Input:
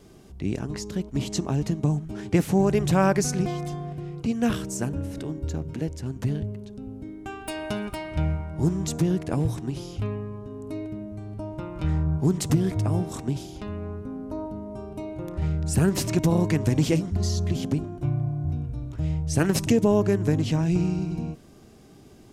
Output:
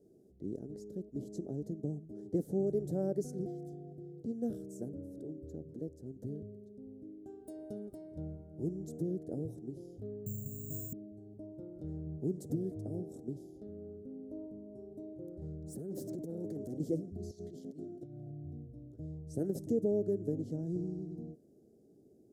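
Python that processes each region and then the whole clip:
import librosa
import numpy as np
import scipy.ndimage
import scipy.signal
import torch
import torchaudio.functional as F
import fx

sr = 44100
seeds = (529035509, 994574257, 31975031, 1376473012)

y = fx.chain(x, sr, fx.resample_bad(factor=6, down='filtered', up='zero_stuff'),
    fx.low_shelf_res(hz=220.0, db=12.5, q=3.0), at=(10.26, 10.93))
y = fx.chain(y, sr, fx.peak_eq(hz=85.0, db=-10.0, octaves=0.98),
    fx.over_compress(threshold_db=-24.0, ratio=-0.5),
    fx.clip_hard(threshold_db=-22.5), at=(15.67, 16.8))
y = fx.chain(y, sr, fx.weighting(curve='D'),
    fx.over_compress(threshold_db=-31.0, ratio=-0.5), at=(17.31, 18.3))
y = scipy.signal.sosfilt(scipy.signal.cheby2(4, 40, 970.0, 'lowpass', fs=sr, output='sos'), y)
y = np.diff(y, prepend=0.0)
y = F.gain(torch.from_numpy(y), 17.0).numpy()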